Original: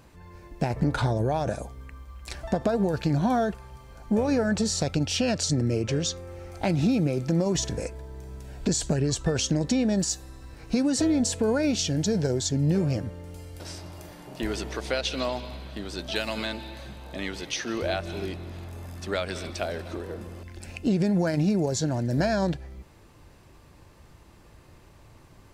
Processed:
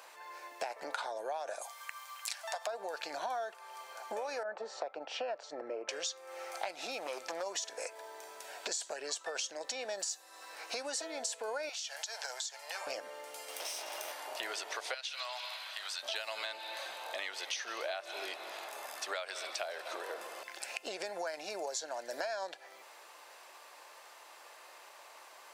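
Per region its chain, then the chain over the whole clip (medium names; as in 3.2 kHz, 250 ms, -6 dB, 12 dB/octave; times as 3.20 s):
1.61–2.67 s: inverse Chebyshev high-pass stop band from 150 Hz, stop band 70 dB + treble shelf 2.6 kHz +9 dB
4.43–5.89 s: band-pass filter 940 Hz, Q 0.66 + tilt EQ -4.5 dB/octave + three bands expanded up and down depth 70%
6.99–7.43 s: high-pass 72 Hz + hard clipper -20.5 dBFS + tape noise reduction on one side only decoder only
11.69–12.87 s: high-pass 790 Hz 24 dB/octave + compression, threshold -35 dBFS
13.48–14.12 s: comb filter that takes the minimum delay 0.33 ms + high-pass 170 Hz + level flattener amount 70%
14.94–16.03 s: high-pass 1.2 kHz + compression 1.5:1, threshold -41 dBFS
whole clip: high-pass 610 Hz 24 dB/octave; compression 5:1, threshold -43 dBFS; trim +6 dB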